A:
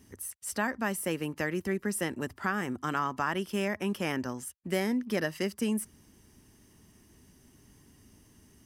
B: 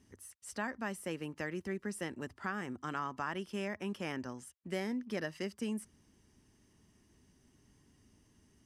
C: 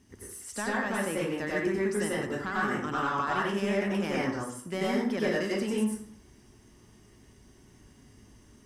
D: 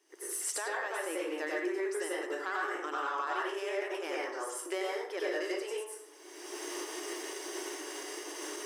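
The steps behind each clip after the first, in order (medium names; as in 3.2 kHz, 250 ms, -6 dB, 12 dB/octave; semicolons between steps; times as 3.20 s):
low-pass 8.4 kHz 12 dB/octave; trim -7.5 dB
saturation -28 dBFS, distortion -19 dB; plate-style reverb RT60 0.59 s, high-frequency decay 0.65×, pre-delay 80 ms, DRR -6 dB; trim +4.5 dB
recorder AGC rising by 36 dB/s; brick-wall FIR high-pass 300 Hz; trim -5 dB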